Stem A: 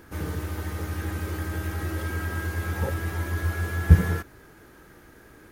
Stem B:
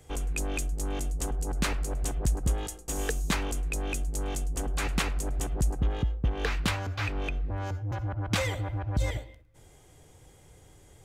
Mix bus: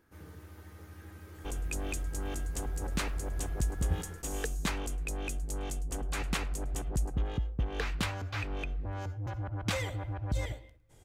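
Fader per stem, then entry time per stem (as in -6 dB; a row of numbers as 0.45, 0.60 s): -18.5, -4.5 dB; 0.00, 1.35 s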